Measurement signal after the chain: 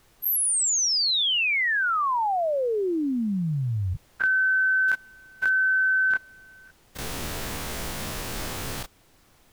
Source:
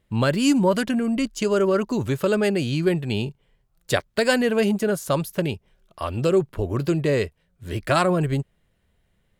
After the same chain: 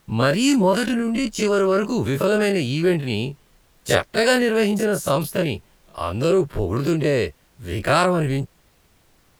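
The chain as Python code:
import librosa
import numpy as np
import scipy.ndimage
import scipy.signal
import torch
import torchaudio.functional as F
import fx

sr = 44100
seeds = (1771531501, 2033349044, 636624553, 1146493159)

y = fx.spec_dilate(x, sr, span_ms=60)
y = fx.dmg_noise_colour(y, sr, seeds[0], colour='pink', level_db=-58.0)
y = y * librosa.db_to_amplitude(-1.0)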